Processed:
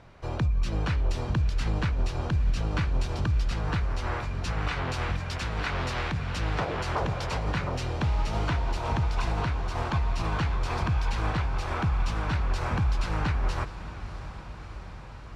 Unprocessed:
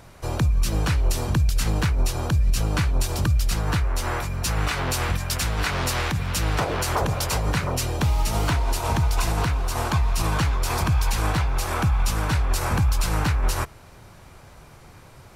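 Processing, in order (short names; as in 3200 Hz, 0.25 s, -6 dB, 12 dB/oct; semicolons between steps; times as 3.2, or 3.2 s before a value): LPF 3800 Hz 12 dB/oct; diffused feedback echo 0.652 s, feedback 73%, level -14 dB; gain -5 dB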